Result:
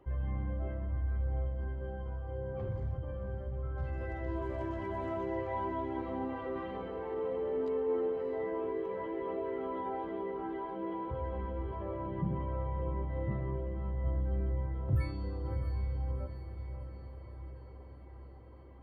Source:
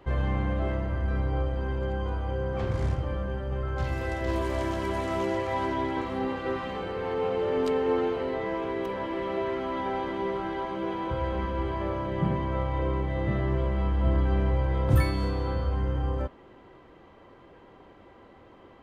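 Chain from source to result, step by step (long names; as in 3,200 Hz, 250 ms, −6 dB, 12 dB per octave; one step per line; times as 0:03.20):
expanding power law on the bin magnitudes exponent 1.5
on a send: feedback delay with all-pass diffusion 641 ms, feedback 59%, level −9 dB
on the sum: level −7.5 dB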